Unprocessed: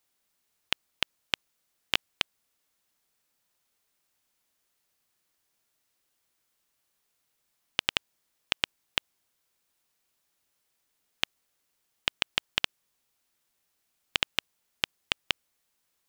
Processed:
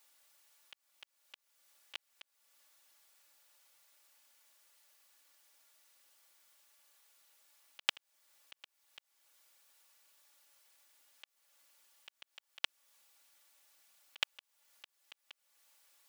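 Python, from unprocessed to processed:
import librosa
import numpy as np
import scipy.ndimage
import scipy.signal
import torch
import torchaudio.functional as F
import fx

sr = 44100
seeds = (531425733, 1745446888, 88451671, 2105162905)

y = scipy.signal.sosfilt(scipy.signal.butter(2, 570.0, 'highpass', fs=sr, output='sos'), x)
y = y + 0.72 * np.pad(y, (int(3.5 * sr / 1000.0), 0))[:len(y)]
y = fx.auto_swell(y, sr, attack_ms=375.0)
y = y * librosa.db_to_amplitude(6.5)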